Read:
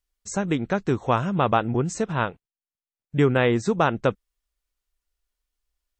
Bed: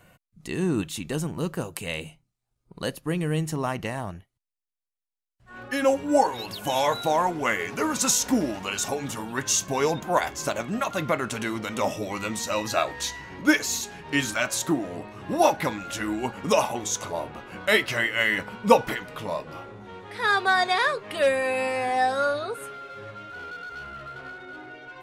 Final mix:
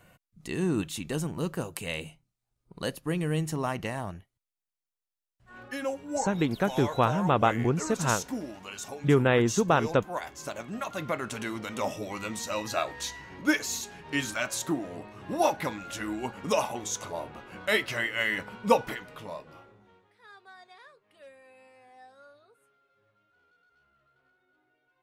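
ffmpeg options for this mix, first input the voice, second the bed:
-filter_complex "[0:a]adelay=5900,volume=0.75[s0];[1:a]volume=1.58,afade=t=out:st=5.28:d=0.63:silence=0.354813,afade=t=in:st=10.19:d=1.18:silence=0.473151,afade=t=out:st=18.72:d=1.44:silence=0.0562341[s1];[s0][s1]amix=inputs=2:normalize=0"

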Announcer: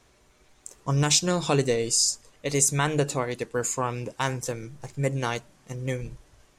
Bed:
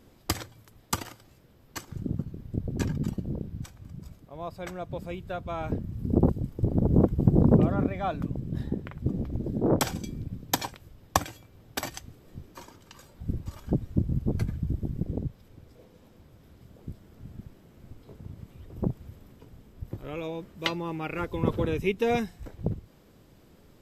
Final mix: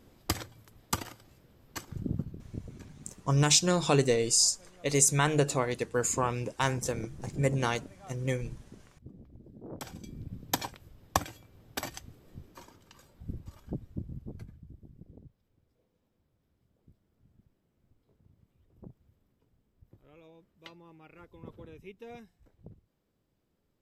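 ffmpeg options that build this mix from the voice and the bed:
-filter_complex "[0:a]adelay=2400,volume=0.841[s0];[1:a]volume=5.96,afade=t=out:st=2.19:d=0.63:silence=0.112202,afade=t=in:st=9.72:d=0.75:silence=0.133352,afade=t=out:st=12.11:d=2.53:silence=0.133352[s1];[s0][s1]amix=inputs=2:normalize=0"

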